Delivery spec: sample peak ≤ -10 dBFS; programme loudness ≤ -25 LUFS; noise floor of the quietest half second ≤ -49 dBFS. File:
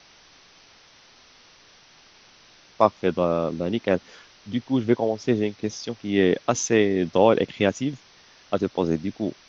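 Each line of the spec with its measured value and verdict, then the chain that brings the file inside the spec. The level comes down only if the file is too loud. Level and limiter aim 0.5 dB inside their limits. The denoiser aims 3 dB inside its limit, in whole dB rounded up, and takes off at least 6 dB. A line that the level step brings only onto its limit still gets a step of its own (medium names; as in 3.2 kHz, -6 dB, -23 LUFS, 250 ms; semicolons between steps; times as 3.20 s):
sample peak -2.5 dBFS: fail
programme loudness -23.5 LUFS: fail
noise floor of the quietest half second -53 dBFS: pass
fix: trim -2 dB; peak limiter -10.5 dBFS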